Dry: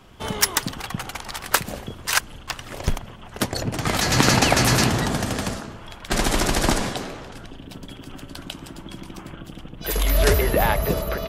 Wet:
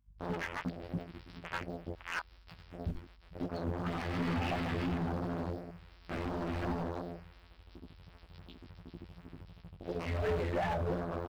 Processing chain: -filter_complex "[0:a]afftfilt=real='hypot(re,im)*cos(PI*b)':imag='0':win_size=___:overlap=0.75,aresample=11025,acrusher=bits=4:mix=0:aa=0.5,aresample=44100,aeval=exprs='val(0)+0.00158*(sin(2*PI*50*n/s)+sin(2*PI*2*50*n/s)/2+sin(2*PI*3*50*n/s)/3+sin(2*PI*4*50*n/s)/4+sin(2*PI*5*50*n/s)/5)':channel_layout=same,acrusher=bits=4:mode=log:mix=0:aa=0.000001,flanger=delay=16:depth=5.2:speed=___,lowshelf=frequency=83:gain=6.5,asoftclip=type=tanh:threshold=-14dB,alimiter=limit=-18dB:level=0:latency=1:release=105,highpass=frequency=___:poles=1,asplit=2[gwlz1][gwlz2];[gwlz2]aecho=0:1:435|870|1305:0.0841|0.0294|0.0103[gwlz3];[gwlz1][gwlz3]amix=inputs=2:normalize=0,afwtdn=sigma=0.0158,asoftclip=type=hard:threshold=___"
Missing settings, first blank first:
2048, 2.8, 42, -28.5dB